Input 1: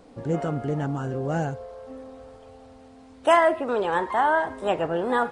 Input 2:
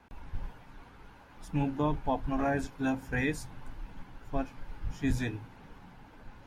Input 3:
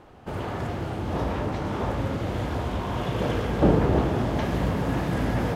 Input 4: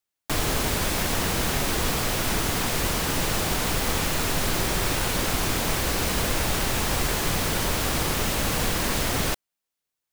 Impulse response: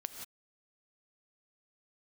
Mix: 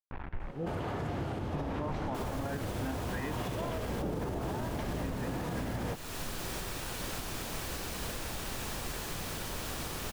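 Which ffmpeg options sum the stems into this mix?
-filter_complex "[0:a]lowpass=1100,adelay=300,volume=0.266[s0];[1:a]acrusher=bits=6:mix=0:aa=0.000001,lowpass=f=2300:w=0.5412,lowpass=f=2300:w=1.3066,volume=0.891,asplit=2[s1][s2];[s2]volume=0.422[s3];[2:a]adelay=400,volume=1.06[s4];[3:a]bandreject=f=2100:w=23,adelay=1850,volume=0.168,asplit=2[s5][s6];[s6]volume=0.596[s7];[4:a]atrim=start_sample=2205[s8];[s3][s7]amix=inputs=2:normalize=0[s9];[s9][s8]afir=irnorm=-1:irlink=0[s10];[s0][s1][s4][s5][s10]amix=inputs=5:normalize=0,alimiter=level_in=1.33:limit=0.0631:level=0:latency=1:release=303,volume=0.75"

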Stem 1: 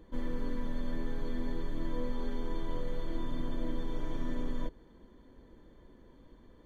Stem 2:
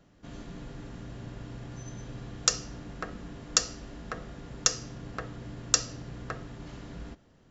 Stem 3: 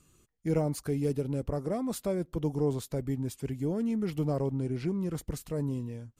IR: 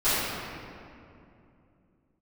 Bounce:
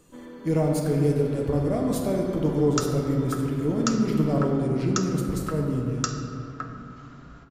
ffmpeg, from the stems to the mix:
-filter_complex "[0:a]highpass=f=210:w=0.5412,highpass=f=210:w=1.3066,volume=0.841[s0];[1:a]equalizer=f=1300:w=3.5:g=15,adelay=300,volume=0.398,asplit=2[s1][s2];[s2]volume=0.0891[s3];[2:a]volume=1.26,asplit=2[s4][s5];[s5]volume=0.178[s6];[3:a]atrim=start_sample=2205[s7];[s3][s6]amix=inputs=2:normalize=0[s8];[s8][s7]afir=irnorm=-1:irlink=0[s9];[s0][s1][s4][s9]amix=inputs=4:normalize=0"

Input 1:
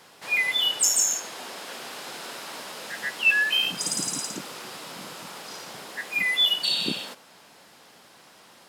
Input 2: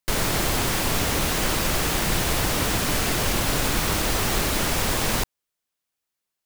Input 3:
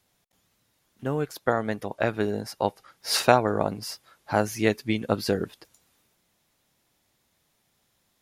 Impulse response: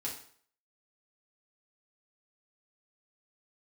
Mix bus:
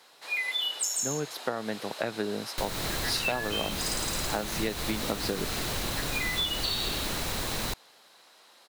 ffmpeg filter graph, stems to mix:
-filter_complex "[0:a]highpass=380,volume=0.531[s0];[1:a]adelay=2500,volume=0.398[s1];[2:a]highpass=f=130:w=0.5412,highpass=f=130:w=1.3066,aeval=exprs='0.447*(abs(mod(val(0)/0.447+3,4)-2)-1)':c=same,volume=0.794[s2];[s0][s1][s2]amix=inputs=3:normalize=0,equalizer=f=4000:w=6.6:g=8.5,acompressor=threshold=0.0501:ratio=6"

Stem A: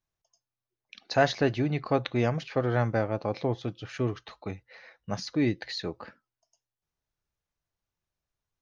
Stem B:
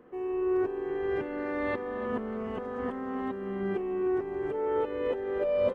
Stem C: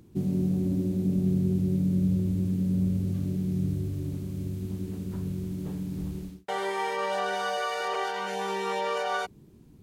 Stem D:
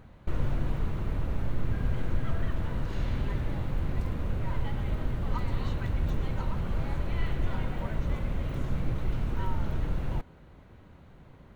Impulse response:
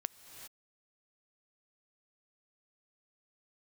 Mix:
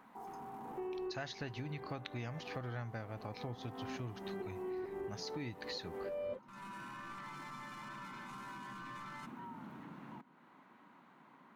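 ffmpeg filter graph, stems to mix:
-filter_complex "[0:a]equalizer=f=440:t=o:w=2.3:g=-10.5,volume=0.944,asplit=2[s0][s1];[1:a]adelay=650,volume=1.06[s2];[2:a]highshelf=f=5800:g=12,volume=18.8,asoftclip=hard,volume=0.0531,aeval=exprs='val(0)*sin(2*PI*590*n/s)':c=same,volume=0.158[s3];[3:a]highpass=f=210:w=0.5412,highpass=f=210:w=1.3066,acrossover=split=280[s4][s5];[s5]acompressor=threshold=0.00178:ratio=2.5[s6];[s4][s6]amix=inputs=2:normalize=0,volume=0.398[s7];[s1]apad=whole_len=281825[s8];[s2][s8]sidechaincompress=threshold=0.00501:ratio=8:attack=28:release=421[s9];[s3][s7]amix=inputs=2:normalize=0,equalizer=f=250:t=o:w=1:g=5,equalizer=f=500:t=o:w=1:g=-8,equalizer=f=1000:t=o:w=1:g=12,equalizer=f=2000:t=o:w=1:g=4,alimiter=level_in=6.68:limit=0.0631:level=0:latency=1:release=22,volume=0.15,volume=1[s10];[s0][s9][s10]amix=inputs=3:normalize=0,acompressor=threshold=0.01:ratio=6"

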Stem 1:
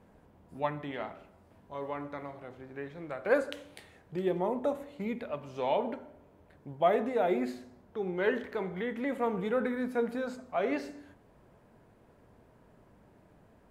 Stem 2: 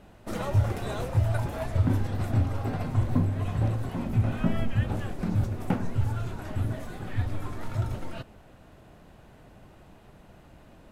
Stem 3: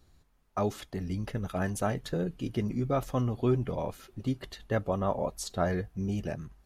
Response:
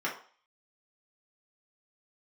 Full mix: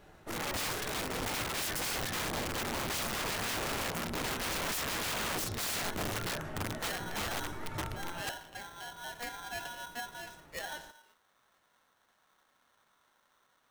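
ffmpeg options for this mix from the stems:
-filter_complex "[0:a]highshelf=f=2300:g=7.5,aeval=exprs='val(0)*sgn(sin(2*PI*1200*n/s))':c=same,volume=0.266[s0];[1:a]volume=0.447,asplit=2[s1][s2];[s2]volume=0.473[s3];[2:a]equalizer=f=160:t=o:w=0.33:g=-6,equalizer=f=315:t=o:w=0.33:g=-6,equalizer=f=1600:t=o:w=0.33:g=10,volume=0.668,asplit=2[s4][s5];[s5]volume=0.562[s6];[3:a]atrim=start_sample=2205[s7];[s3][s6]amix=inputs=2:normalize=0[s8];[s8][s7]afir=irnorm=-1:irlink=0[s9];[s0][s1][s4][s9]amix=inputs=4:normalize=0,aeval=exprs='(mod(31.6*val(0)+1,2)-1)/31.6':c=same"

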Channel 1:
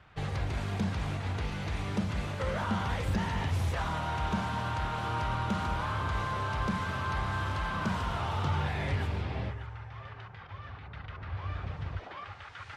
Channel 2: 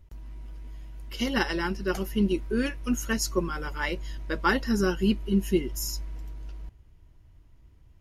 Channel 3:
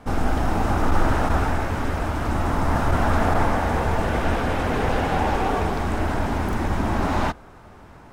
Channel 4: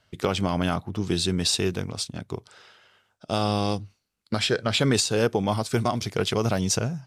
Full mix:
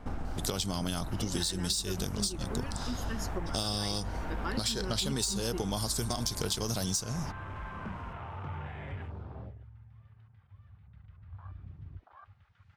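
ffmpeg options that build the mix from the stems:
-filter_complex "[0:a]afwtdn=0.0126,volume=0.355[s0];[1:a]lowshelf=f=130:g=10.5,volume=0.376[s1];[2:a]alimiter=limit=0.0841:level=0:latency=1:release=319,highshelf=f=8900:g=-8.5,volume=0.501[s2];[3:a]aexciter=amount=3.4:drive=9.6:freq=3500,adelay=250,volume=1.06[s3];[s2][s3]amix=inputs=2:normalize=0,bass=f=250:g=4,treble=f=4000:g=0,acompressor=threshold=0.112:ratio=6,volume=1[s4];[s0][s1][s4]amix=inputs=3:normalize=0,acompressor=threshold=0.0251:ratio=3"

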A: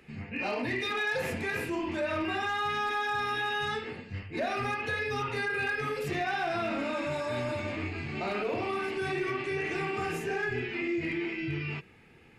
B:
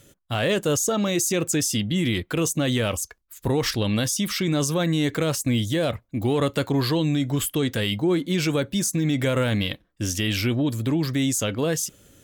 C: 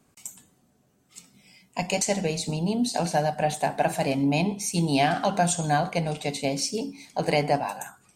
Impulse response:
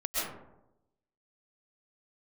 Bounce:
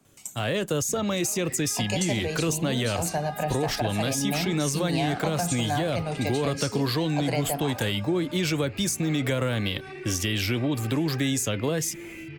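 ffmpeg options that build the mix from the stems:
-filter_complex "[0:a]alimiter=level_in=3.16:limit=0.0631:level=0:latency=1:release=244,volume=0.316,adelay=800,volume=1.26[s0];[1:a]dynaudnorm=f=270:g=3:m=3.76,adelay=50,volume=0.422[s1];[2:a]volume=1.06[s2];[s0][s1][s2]amix=inputs=3:normalize=0,acrossover=split=140|300[s3][s4][s5];[s3]acompressor=threshold=0.0282:ratio=4[s6];[s4]acompressor=threshold=0.0158:ratio=4[s7];[s5]acompressor=threshold=0.0501:ratio=4[s8];[s6][s7][s8]amix=inputs=3:normalize=0"

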